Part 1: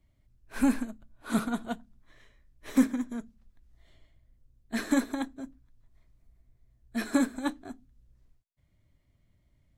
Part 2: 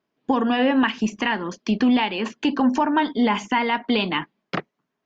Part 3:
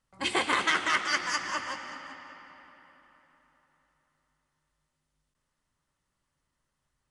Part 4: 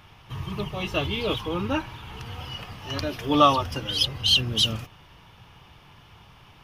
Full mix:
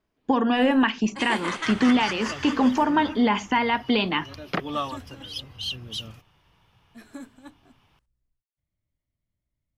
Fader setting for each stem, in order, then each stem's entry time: -15.0 dB, -1.0 dB, -4.0 dB, -11.5 dB; 0.00 s, 0.00 s, 0.95 s, 1.35 s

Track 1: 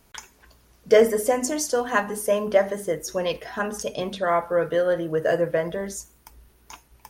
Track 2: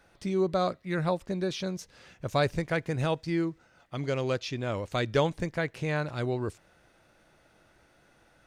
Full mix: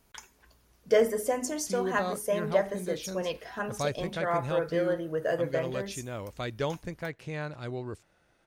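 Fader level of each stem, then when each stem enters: -7.0 dB, -6.0 dB; 0.00 s, 1.45 s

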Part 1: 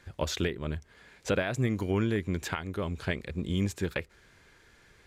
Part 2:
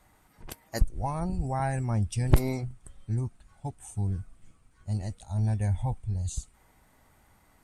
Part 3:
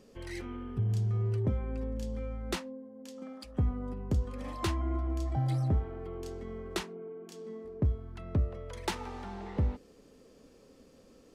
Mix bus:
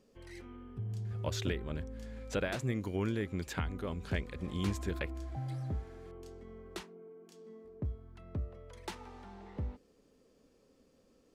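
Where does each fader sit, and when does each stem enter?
-6.0 dB, mute, -9.0 dB; 1.05 s, mute, 0.00 s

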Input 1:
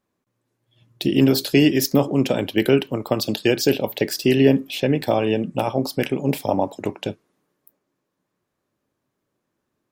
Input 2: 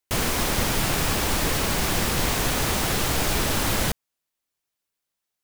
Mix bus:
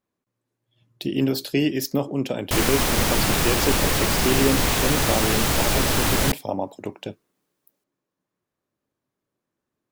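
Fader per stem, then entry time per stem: -6.0 dB, +2.5 dB; 0.00 s, 2.40 s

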